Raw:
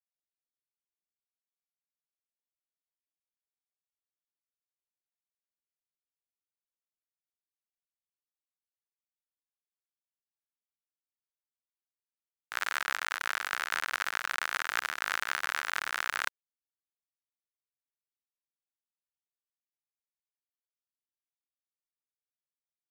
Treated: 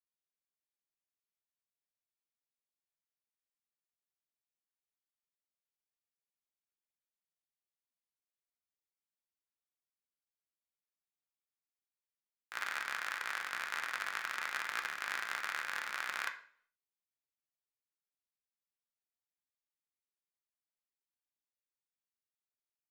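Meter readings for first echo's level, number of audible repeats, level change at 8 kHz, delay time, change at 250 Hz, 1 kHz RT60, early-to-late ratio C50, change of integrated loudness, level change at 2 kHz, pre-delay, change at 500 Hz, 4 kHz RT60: none, none, -7.0 dB, none, -5.5 dB, 0.50 s, 10.5 dB, -5.5 dB, -5.5 dB, 3 ms, -6.0 dB, 0.45 s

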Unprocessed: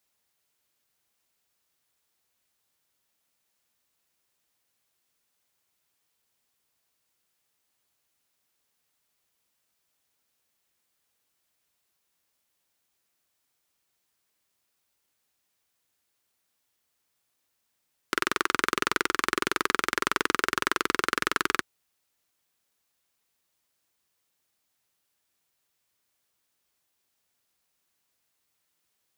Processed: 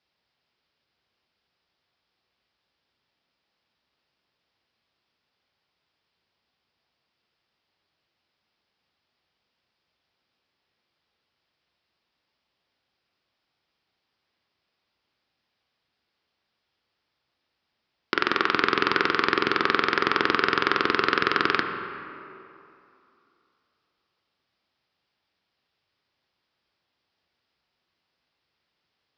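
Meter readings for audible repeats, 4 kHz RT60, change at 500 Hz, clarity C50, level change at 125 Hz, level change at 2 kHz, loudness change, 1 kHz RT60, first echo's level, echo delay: none, 1.8 s, +6.0 dB, 6.0 dB, +5.5 dB, +3.5 dB, +4.0 dB, 2.8 s, none, none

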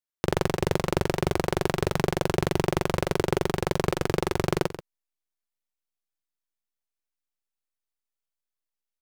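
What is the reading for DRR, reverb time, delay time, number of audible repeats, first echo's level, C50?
none, none, 0.134 s, 1, -12.5 dB, none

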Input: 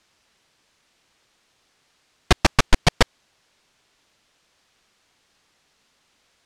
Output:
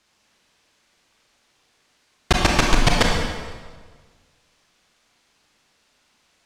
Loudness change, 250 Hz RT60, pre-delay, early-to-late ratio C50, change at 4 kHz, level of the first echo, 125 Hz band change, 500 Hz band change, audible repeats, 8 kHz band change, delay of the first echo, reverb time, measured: +1.0 dB, 1.6 s, 29 ms, 1.0 dB, +1.5 dB, none, +1.0 dB, +1.5 dB, none, +2.0 dB, none, 1.5 s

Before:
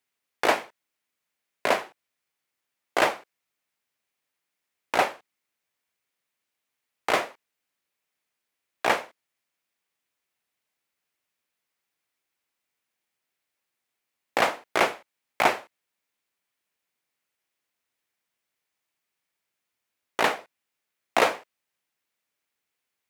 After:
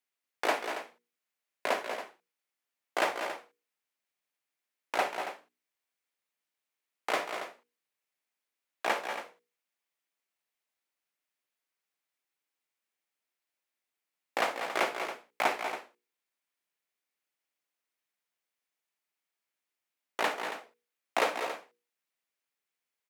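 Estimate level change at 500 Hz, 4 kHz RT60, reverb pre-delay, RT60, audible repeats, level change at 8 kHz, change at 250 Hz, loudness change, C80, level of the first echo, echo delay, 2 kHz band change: -6.0 dB, none, none, none, 3, -6.0 dB, -7.5 dB, -7.5 dB, none, -15.5 dB, 55 ms, -6.0 dB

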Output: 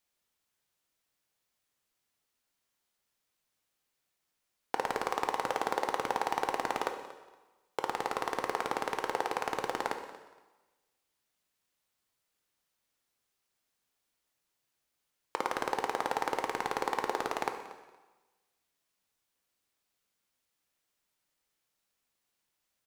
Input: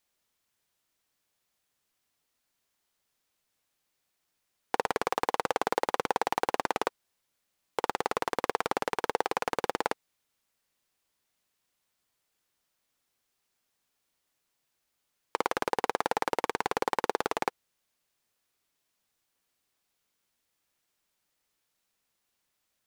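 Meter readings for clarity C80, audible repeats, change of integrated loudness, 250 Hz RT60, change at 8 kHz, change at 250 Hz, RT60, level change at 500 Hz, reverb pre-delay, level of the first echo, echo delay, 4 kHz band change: 10.0 dB, 2, -2.5 dB, 1.2 s, -2.5 dB, -3.0 dB, 1.2 s, -3.5 dB, 7 ms, -17.5 dB, 0.234 s, -2.5 dB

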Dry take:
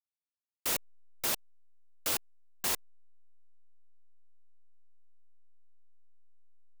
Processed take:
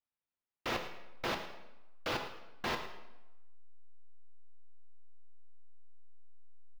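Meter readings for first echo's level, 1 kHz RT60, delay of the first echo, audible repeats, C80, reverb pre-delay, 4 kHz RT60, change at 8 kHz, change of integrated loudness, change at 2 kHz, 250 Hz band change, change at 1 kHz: -14.0 dB, 1.0 s, 0.109 s, 1, 9.0 dB, 5 ms, 0.75 s, -18.5 dB, -6.5 dB, +2.0 dB, +4.5 dB, +4.0 dB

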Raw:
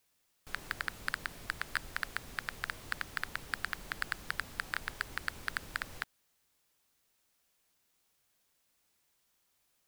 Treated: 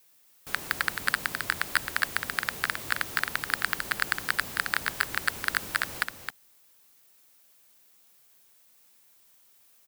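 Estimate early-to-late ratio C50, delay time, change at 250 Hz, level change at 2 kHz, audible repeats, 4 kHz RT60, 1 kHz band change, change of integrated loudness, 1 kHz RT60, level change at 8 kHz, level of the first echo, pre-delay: none, 0.266 s, +8.5 dB, +9.5 dB, 1, none, +9.5 dB, +10.0 dB, none, +12.5 dB, -6.5 dB, none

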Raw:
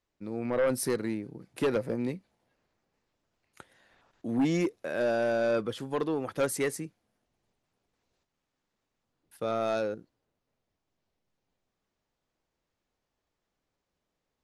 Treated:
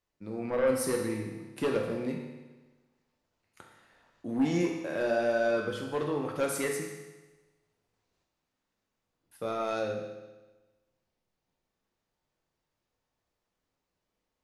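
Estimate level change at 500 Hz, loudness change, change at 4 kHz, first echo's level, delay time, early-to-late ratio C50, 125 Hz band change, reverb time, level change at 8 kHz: -0.5 dB, -0.5 dB, -0.5 dB, none, none, 4.0 dB, -1.0 dB, 1.2 s, 0.0 dB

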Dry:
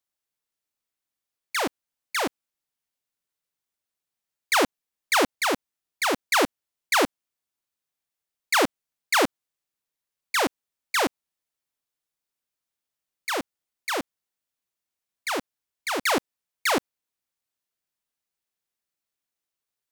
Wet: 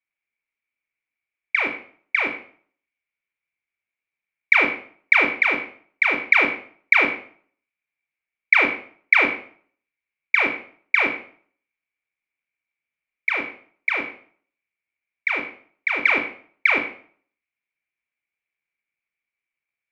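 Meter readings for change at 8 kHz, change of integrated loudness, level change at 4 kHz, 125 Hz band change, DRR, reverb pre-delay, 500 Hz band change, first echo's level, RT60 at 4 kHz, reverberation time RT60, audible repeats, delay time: under -20 dB, +6.0 dB, -5.5 dB, n/a, 4.0 dB, 20 ms, -3.0 dB, none, 0.45 s, 0.50 s, none, none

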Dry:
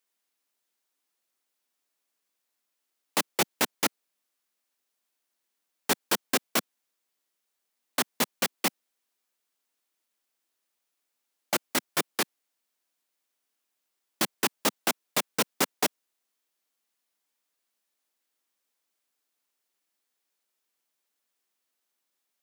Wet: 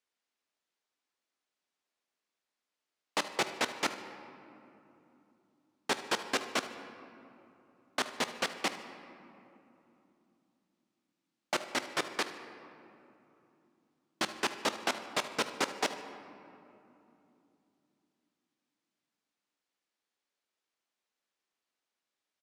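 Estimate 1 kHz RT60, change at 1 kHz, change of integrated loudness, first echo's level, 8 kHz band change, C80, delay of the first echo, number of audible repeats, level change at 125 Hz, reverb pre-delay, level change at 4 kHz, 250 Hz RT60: 2.8 s, -2.5 dB, -6.0 dB, -16.0 dB, -9.5 dB, 11.0 dB, 75 ms, 1, -8.0 dB, 18 ms, -4.5 dB, 4.4 s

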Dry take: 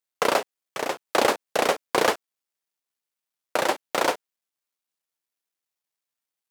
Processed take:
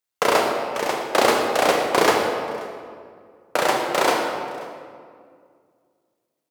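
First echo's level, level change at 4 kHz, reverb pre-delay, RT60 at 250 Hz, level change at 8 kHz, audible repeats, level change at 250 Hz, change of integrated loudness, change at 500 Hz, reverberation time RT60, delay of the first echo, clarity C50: -22.5 dB, +4.5 dB, 26 ms, 2.5 s, +3.5 dB, 1, +6.0 dB, +4.0 dB, +5.0 dB, 2.1 s, 0.533 s, 2.0 dB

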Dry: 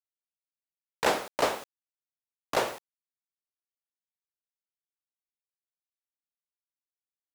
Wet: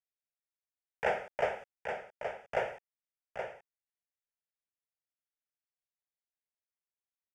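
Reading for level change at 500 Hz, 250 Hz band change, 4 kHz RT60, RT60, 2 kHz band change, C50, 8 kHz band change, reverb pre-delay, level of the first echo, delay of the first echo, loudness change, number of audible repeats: -3.0 dB, -13.0 dB, none, none, -3.5 dB, none, under -20 dB, none, -7.0 dB, 0.823 s, -7.0 dB, 1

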